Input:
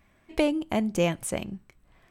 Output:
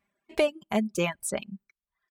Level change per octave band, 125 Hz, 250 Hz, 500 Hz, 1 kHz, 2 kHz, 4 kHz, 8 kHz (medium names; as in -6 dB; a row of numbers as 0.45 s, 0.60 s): -4.5 dB, -4.0 dB, 0.0 dB, -1.0 dB, +1.0 dB, -0.5 dB, +1.0 dB